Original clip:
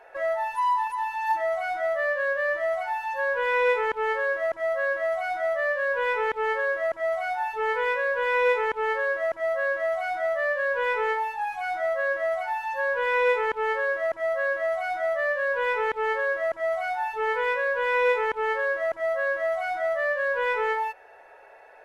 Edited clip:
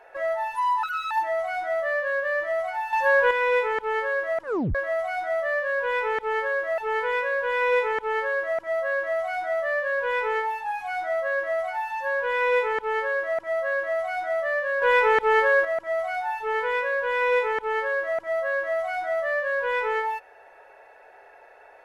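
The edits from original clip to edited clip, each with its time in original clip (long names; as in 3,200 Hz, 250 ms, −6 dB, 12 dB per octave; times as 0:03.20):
0:00.83–0:01.24: play speed 147%
0:03.06–0:03.44: clip gain +7 dB
0:04.55: tape stop 0.33 s
0:06.91–0:07.51: remove
0:15.55–0:16.38: clip gain +6.5 dB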